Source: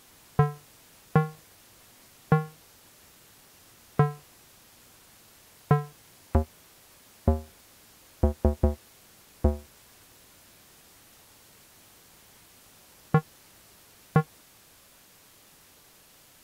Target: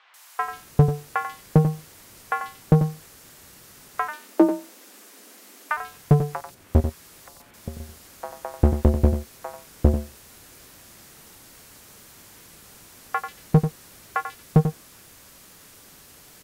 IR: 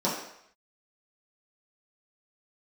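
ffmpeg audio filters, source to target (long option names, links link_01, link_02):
-filter_complex "[0:a]asettb=1/sr,asplit=3[link_01][link_02][link_03];[link_01]atrim=end=6.404[link_04];[link_02]atrim=start=6.4:end=7.4,asetpts=PTS-STARTPTS,afade=type=in:duration=0.004:curve=qsin,afade=type=out:start_time=0.996:duration=0.004:curve=qsin,acompressor=threshold=-40dB:ratio=6[link_05];[link_03]atrim=start=7.396[link_06];[link_04][link_05]acrossfade=duration=0.004:curve1=hsin:curve2=qsin[link_07];[link_07][link_06]acrossfade=duration=0.004:curve1=qsin:curve2=hsin,acrossover=split=770|3200[link_08][link_09][link_10];[link_10]adelay=140[link_11];[link_08]adelay=400[link_12];[link_12][link_09][link_11]amix=inputs=3:normalize=0,aeval=exprs='clip(val(0),-1,0.141)':channel_layout=same,asplit=2[link_13][link_14];[link_14]aecho=0:1:91:0.355[link_15];[link_13][link_15]amix=inputs=2:normalize=0,asplit=3[link_16][link_17][link_18];[link_16]afade=type=out:start_time=4.07:duration=0.02[link_19];[link_17]afreqshift=180,afade=type=in:start_time=4.07:duration=0.02,afade=type=out:start_time=5.76:duration=0.02[link_20];[link_18]afade=type=in:start_time=5.76:duration=0.02[link_21];[link_19][link_20][link_21]amix=inputs=3:normalize=0,volume=7dB"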